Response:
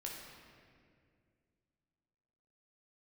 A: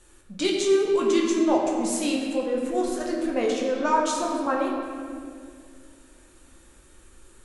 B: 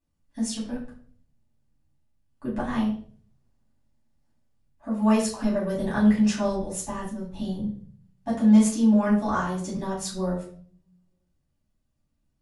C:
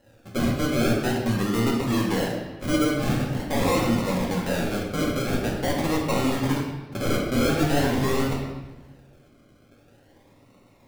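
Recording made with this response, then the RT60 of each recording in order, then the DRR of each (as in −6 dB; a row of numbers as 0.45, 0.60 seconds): A; 2.2, 0.50, 1.2 seconds; −2.5, −7.5, −2.5 decibels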